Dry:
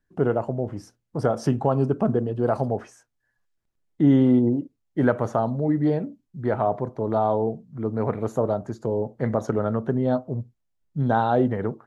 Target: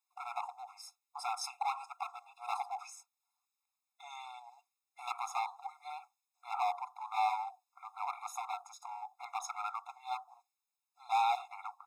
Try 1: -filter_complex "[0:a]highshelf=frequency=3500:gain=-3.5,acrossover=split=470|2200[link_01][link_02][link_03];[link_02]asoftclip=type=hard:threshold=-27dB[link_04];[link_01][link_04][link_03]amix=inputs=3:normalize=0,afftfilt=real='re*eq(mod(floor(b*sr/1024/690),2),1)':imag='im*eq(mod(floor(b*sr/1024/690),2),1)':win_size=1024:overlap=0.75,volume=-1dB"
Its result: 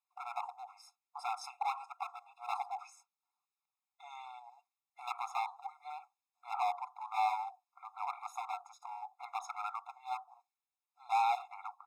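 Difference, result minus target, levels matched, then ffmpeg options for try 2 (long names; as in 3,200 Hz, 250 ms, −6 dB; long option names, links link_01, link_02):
8,000 Hz band −7.5 dB
-filter_complex "[0:a]highshelf=frequency=3500:gain=7.5,acrossover=split=470|2200[link_01][link_02][link_03];[link_02]asoftclip=type=hard:threshold=-27dB[link_04];[link_01][link_04][link_03]amix=inputs=3:normalize=0,afftfilt=real='re*eq(mod(floor(b*sr/1024/690),2),1)':imag='im*eq(mod(floor(b*sr/1024/690),2),1)':win_size=1024:overlap=0.75,volume=-1dB"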